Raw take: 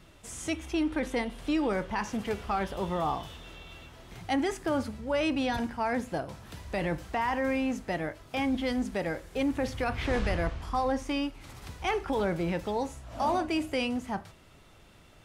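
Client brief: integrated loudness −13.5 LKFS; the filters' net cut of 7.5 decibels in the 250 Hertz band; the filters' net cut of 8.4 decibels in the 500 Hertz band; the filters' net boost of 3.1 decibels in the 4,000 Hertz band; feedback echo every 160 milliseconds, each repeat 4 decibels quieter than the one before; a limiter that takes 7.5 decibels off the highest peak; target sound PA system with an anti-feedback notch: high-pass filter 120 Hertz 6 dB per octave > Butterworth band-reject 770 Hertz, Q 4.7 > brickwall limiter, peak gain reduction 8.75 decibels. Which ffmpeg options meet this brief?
ffmpeg -i in.wav -af "equalizer=frequency=250:width_type=o:gain=-5.5,equalizer=frequency=500:width_type=o:gain=-8.5,equalizer=frequency=4000:width_type=o:gain=4.5,alimiter=level_in=2dB:limit=-24dB:level=0:latency=1,volume=-2dB,highpass=frequency=120:poles=1,asuperstop=centerf=770:order=8:qfactor=4.7,aecho=1:1:160|320|480|640|800|960|1120|1280|1440:0.631|0.398|0.25|0.158|0.0994|0.0626|0.0394|0.0249|0.0157,volume=25.5dB,alimiter=limit=-5dB:level=0:latency=1" out.wav

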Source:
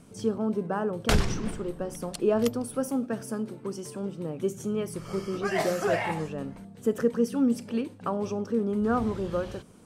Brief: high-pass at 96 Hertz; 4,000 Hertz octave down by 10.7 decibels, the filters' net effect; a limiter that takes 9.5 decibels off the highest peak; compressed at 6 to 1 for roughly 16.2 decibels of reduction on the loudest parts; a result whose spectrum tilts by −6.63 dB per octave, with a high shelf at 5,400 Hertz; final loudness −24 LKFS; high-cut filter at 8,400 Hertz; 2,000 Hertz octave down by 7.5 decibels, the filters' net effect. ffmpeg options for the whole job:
ffmpeg -i in.wav -af "highpass=96,lowpass=8400,equalizer=frequency=2000:width_type=o:gain=-7,equalizer=frequency=4000:width_type=o:gain=-8.5,highshelf=frequency=5400:gain=-8,acompressor=threshold=-38dB:ratio=6,volume=20.5dB,alimiter=limit=-14.5dB:level=0:latency=1" out.wav

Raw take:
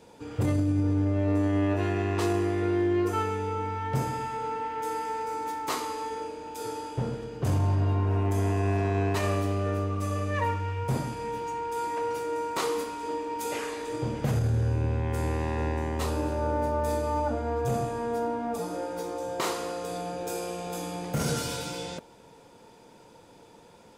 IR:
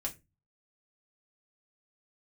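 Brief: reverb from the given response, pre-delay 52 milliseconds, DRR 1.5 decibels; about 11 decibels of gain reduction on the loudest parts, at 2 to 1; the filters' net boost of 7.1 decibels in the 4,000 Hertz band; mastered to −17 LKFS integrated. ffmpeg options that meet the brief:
-filter_complex "[0:a]equalizer=frequency=4000:width_type=o:gain=9,acompressor=threshold=-43dB:ratio=2,asplit=2[link_01][link_02];[1:a]atrim=start_sample=2205,adelay=52[link_03];[link_02][link_03]afir=irnorm=-1:irlink=0,volume=-2dB[link_04];[link_01][link_04]amix=inputs=2:normalize=0,volume=19dB"

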